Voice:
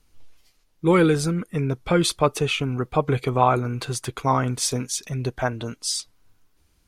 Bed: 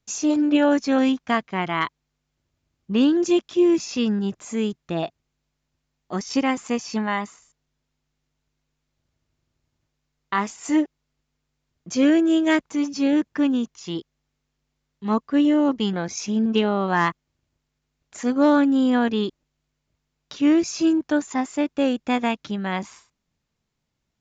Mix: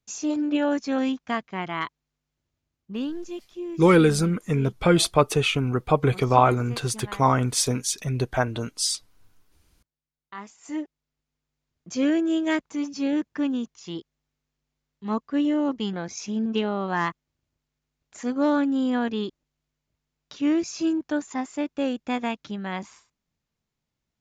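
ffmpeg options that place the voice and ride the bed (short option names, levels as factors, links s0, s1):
-filter_complex "[0:a]adelay=2950,volume=1.12[s0];[1:a]volume=2,afade=t=out:st=2.51:d=0.74:silence=0.281838,afade=t=in:st=10.32:d=1.41:silence=0.266073[s1];[s0][s1]amix=inputs=2:normalize=0"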